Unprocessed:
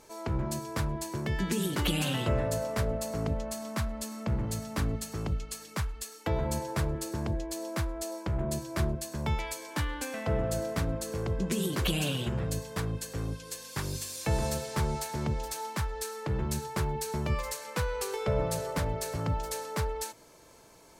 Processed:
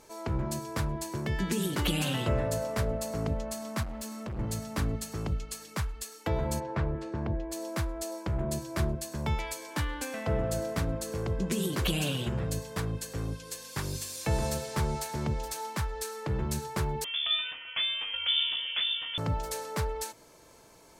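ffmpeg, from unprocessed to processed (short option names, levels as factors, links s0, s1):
-filter_complex "[0:a]asettb=1/sr,asplit=3[s0][s1][s2];[s0]atrim=end=3.834[s3];[s1]atrim=start=3.83:end=4.39,asetpts=PTS-STARTPTS,afade=t=in:d=0.004:c=qsin,afade=t=out:st=0.556:d=0.004:c=qsin,asoftclip=type=hard:threshold=0.0188[s4];[s2]atrim=start=4.386[s5];[s3][s4]acrossfade=d=0.004:c1=hsin:c2=qsin[s6];[s6][s5]acrossfade=d=0.004:c1=qsin:c2=hsin,asplit=3[s7][s8][s9];[s7]afade=t=out:st=6.59:d=0.02[s10];[s8]lowpass=2400,afade=t=in:st=6.59:d=0.02,afade=t=out:st=7.51:d=0.02[s11];[s9]afade=t=in:st=7.51:d=0.02[s12];[s10][s11][s12]amix=inputs=3:normalize=0,asettb=1/sr,asplit=3[s13][s14][s15];[s13]atrim=end=17.044[s16];[s14]atrim=start=17.04:end=19.18,asetpts=PTS-STARTPTS,afade=t=in:d=0.004:c=qsin,afade=t=out:st=2.136:d=0.004:c=qsin,lowpass=f=3100:t=q:w=0.5098,lowpass=f=3100:t=q:w=0.6013,lowpass=f=3100:t=q:w=0.9,lowpass=f=3100:t=q:w=2.563,afreqshift=-3600[s17];[s15]atrim=start=19.176[s18];[s16][s17]acrossfade=d=0.004:c1=hsin:c2=qsin[s19];[s19][s18]acrossfade=d=0.004:c1=qsin:c2=hsin"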